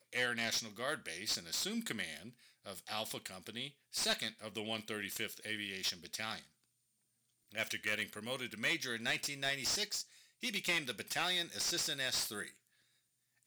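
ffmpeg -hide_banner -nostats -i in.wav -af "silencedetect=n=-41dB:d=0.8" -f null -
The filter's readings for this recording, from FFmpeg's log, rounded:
silence_start: 6.39
silence_end: 7.55 | silence_duration: 1.16
silence_start: 12.48
silence_end: 13.47 | silence_duration: 0.99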